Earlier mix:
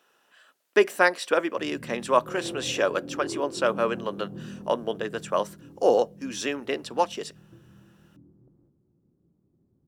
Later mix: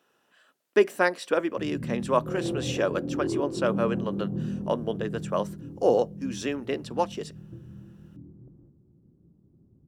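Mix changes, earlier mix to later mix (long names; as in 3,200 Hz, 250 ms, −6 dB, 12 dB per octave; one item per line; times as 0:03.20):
speech −5.0 dB
master: add low-shelf EQ 350 Hz +11 dB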